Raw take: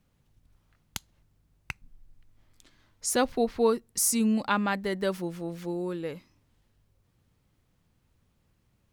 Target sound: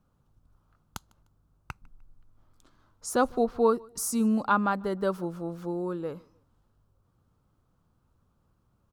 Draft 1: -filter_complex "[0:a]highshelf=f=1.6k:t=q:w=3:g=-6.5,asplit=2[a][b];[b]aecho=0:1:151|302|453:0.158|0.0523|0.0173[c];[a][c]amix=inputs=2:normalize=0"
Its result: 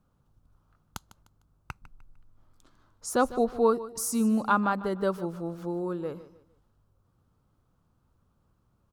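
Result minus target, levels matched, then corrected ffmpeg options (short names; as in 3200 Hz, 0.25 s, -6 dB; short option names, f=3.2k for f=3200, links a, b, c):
echo-to-direct +10.5 dB
-filter_complex "[0:a]highshelf=f=1.6k:t=q:w=3:g=-6.5,asplit=2[a][b];[b]aecho=0:1:151|302:0.0473|0.0156[c];[a][c]amix=inputs=2:normalize=0"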